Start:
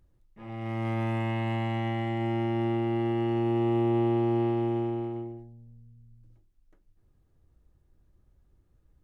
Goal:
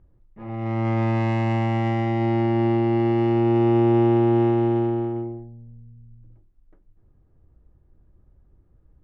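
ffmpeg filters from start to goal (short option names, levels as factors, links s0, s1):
-af "adynamicsmooth=sensitivity=3.5:basefreq=1700,volume=2.37"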